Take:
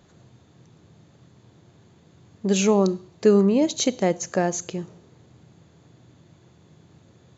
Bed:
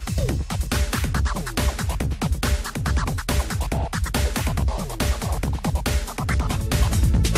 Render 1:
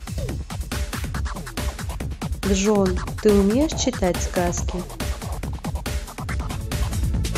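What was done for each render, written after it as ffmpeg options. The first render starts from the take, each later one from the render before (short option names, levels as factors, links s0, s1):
-filter_complex "[1:a]volume=0.596[s0];[0:a][s0]amix=inputs=2:normalize=0"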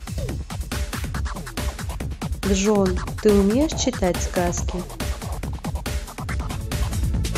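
-af anull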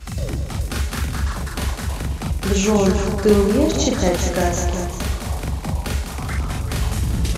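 -filter_complex "[0:a]asplit=2[s0][s1];[s1]adelay=43,volume=0.794[s2];[s0][s2]amix=inputs=2:normalize=0,asplit=2[s3][s4];[s4]aecho=0:1:201|388:0.398|0.282[s5];[s3][s5]amix=inputs=2:normalize=0"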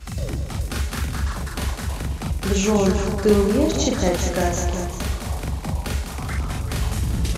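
-af "volume=0.794"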